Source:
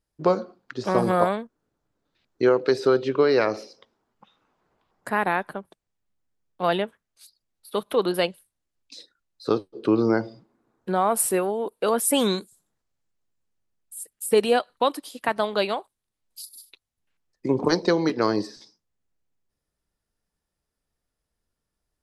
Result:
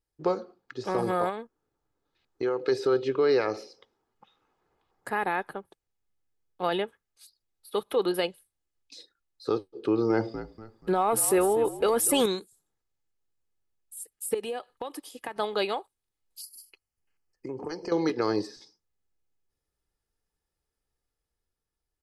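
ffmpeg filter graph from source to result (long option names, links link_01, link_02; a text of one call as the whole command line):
ffmpeg -i in.wav -filter_complex "[0:a]asettb=1/sr,asplit=3[link_01][link_02][link_03];[link_01]atrim=end=1.294[link_04];[link_02]atrim=start=1.29:end=2.61,asetpts=PTS-STARTPTS,afade=type=in:duration=0.004:curve=qsin,afade=type=out:start_time=1.316:duration=0.004:curve=qsin,equalizer=frequency=1000:width=1.5:gain=3,acompressor=threshold=-24dB:ratio=2.5:attack=3.2:release=140:knee=1:detection=peak[link_05];[link_03]atrim=start=2.606[link_06];[link_04][link_05]acrossfade=duration=0.004:curve1=hsin:curve2=qsin[link_07];[link_07][link_06]acrossfade=duration=0.004:curve1=qsin:curve2=hsin,asettb=1/sr,asplit=3[link_08][link_09][link_10];[link_08]atrim=end=10.104[link_11];[link_09]atrim=start=10.1:end=12.26,asetpts=PTS-STARTPTS,afade=type=in:duration=0.004:curve=qsin,afade=type=out:start_time=2.156:duration=0.004:curve=qsin,acontrast=70,asplit=4[link_12][link_13][link_14][link_15];[link_13]adelay=240,afreqshift=-58,volume=-15.5dB[link_16];[link_14]adelay=480,afreqshift=-116,volume=-24.1dB[link_17];[link_15]adelay=720,afreqshift=-174,volume=-32.8dB[link_18];[link_12][link_16][link_17][link_18]amix=inputs=4:normalize=0,atrim=end_sample=95256[link_19];[link_10]atrim=start=12.256[link_20];[link_11][link_19]acrossfade=duration=0.004:curve1=hsin:curve2=qsin[link_21];[link_21][link_20]acrossfade=duration=0.004:curve1=qsin:curve2=hsin,asettb=1/sr,asplit=3[link_22][link_23][link_24];[link_22]atrim=end=14.344[link_25];[link_23]atrim=start=14.34:end=15.36,asetpts=PTS-STARTPTS,afade=type=in:duration=0.004:curve=qsin,afade=type=out:start_time=1.016:duration=0.004:curve=qsin,equalizer=frequency=4100:width_type=o:width=0.33:gain=-6,bandreject=frequency=1400:width=12,acompressor=threshold=-26dB:ratio=12:attack=3.2:release=140:knee=1:detection=peak[link_26];[link_24]atrim=start=15.356[link_27];[link_25][link_26]acrossfade=duration=0.004:curve1=hsin:curve2=qsin[link_28];[link_28][link_27]acrossfade=duration=0.004:curve1=qsin:curve2=hsin,asettb=1/sr,asplit=3[link_29][link_30][link_31];[link_29]atrim=end=16.414[link_32];[link_30]atrim=start=16.41:end=17.92,asetpts=PTS-STARTPTS,afade=type=in:duration=0.004:curve=qsin,afade=type=out:start_time=1.506:duration=0.004:curve=qsin,acompressor=threshold=-32dB:ratio=3:attack=3.2:release=140:knee=1:detection=peak,asuperstop=centerf=3700:order=8:qfactor=3.6[link_33];[link_31]atrim=start=17.916[link_34];[link_32][link_33]acrossfade=duration=0.004:curve1=hsin:curve2=qsin[link_35];[link_35][link_34]acrossfade=duration=0.004:curve1=qsin:curve2=hsin,aecho=1:1:2.4:0.38,dynaudnorm=framelen=180:gausssize=11:maxgain=3dB,alimiter=limit=-9dB:level=0:latency=1:release=20,volume=-6.5dB" out.wav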